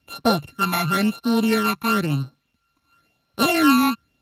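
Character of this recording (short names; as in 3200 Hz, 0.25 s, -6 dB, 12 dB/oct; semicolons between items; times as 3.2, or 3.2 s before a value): a buzz of ramps at a fixed pitch in blocks of 32 samples; phasing stages 12, 0.98 Hz, lowest notch 510–2400 Hz; a quantiser's noise floor 12-bit, dither none; Speex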